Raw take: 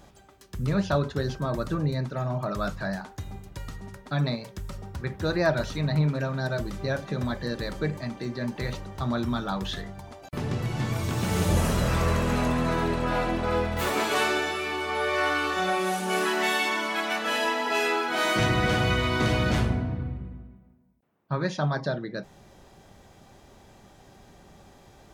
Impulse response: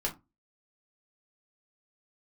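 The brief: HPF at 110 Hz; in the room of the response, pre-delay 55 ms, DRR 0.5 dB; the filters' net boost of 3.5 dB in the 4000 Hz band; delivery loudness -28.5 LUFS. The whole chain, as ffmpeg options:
-filter_complex "[0:a]highpass=110,equalizer=f=4k:t=o:g=4.5,asplit=2[a][b];[1:a]atrim=start_sample=2205,adelay=55[c];[b][c]afir=irnorm=-1:irlink=0,volume=-5dB[d];[a][d]amix=inputs=2:normalize=0,volume=-4.5dB"

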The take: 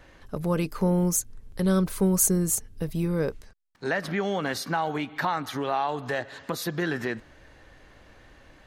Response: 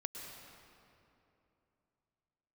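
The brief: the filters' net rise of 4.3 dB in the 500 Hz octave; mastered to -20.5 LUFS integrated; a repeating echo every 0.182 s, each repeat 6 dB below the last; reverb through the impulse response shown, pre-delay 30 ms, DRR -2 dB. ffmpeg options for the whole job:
-filter_complex "[0:a]equalizer=f=500:t=o:g=5.5,aecho=1:1:182|364|546|728|910|1092:0.501|0.251|0.125|0.0626|0.0313|0.0157,asplit=2[a][b];[1:a]atrim=start_sample=2205,adelay=30[c];[b][c]afir=irnorm=-1:irlink=0,volume=3dB[d];[a][d]amix=inputs=2:normalize=0"

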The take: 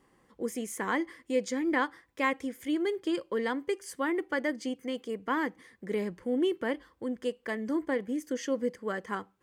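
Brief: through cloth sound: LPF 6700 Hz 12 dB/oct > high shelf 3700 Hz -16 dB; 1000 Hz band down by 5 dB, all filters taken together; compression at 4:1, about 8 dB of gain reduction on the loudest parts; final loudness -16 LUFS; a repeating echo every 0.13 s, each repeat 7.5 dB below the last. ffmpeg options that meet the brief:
-af "equalizer=f=1k:t=o:g=-4.5,acompressor=threshold=-34dB:ratio=4,lowpass=6.7k,highshelf=f=3.7k:g=-16,aecho=1:1:130|260|390|520|650:0.422|0.177|0.0744|0.0312|0.0131,volume=22.5dB"

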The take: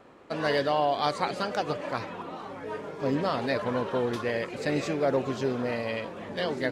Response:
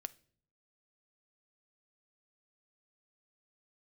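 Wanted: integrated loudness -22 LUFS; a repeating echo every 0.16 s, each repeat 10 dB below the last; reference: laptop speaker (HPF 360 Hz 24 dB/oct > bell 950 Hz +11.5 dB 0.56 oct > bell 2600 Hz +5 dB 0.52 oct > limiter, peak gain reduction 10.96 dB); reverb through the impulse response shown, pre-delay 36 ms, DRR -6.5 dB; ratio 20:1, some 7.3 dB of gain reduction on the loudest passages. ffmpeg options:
-filter_complex "[0:a]acompressor=threshold=-28dB:ratio=20,aecho=1:1:160|320|480|640:0.316|0.101|0.0324|0.0104,asplit=2[a][b];[1:a]atrim=start_sample=2205,adelay=36[c];[b][c]afir=irnorm=-1:irlink=0,volume=10dB[d];[a][d]amix=inputs=2:normalize=0,highpass=f=360:w=0.5412,highpass=f=360:w=1.3066,equalizer=f=950:t=o:w=0.56:g=11.5,equalizer=f=2.6k:t=o:w=0.52:g=5,volume=5.5dB,alimiter=limit=-13dB:level=0:latency=1"

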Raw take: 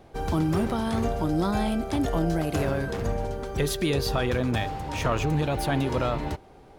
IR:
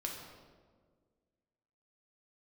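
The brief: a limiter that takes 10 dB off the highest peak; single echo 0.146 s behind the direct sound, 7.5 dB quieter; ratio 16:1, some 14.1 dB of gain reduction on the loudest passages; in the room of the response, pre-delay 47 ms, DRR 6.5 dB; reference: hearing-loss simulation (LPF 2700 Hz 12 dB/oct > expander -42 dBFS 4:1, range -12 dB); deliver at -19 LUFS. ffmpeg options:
-filter_complex "[0:a]acompressor=threshold=-35dB:ratio=16,alimiter=level_in=11.5dB:limit=-24dB:level=0:latency=1,volume=-11.5dB,aecho=1:1:146:0.422,asplit=2[a][b];[1:a]atrim=start_sample=2205,adelay=47[c];[b][c]afir=irnorm=-1:irlink=0,volume=-7dB[d];[a][d]amix=inputs=2:normalize=0,lowpass=2.7k,agate=range=-12dB:threshold=-42dB:ratio=4,volume=23.5dB"

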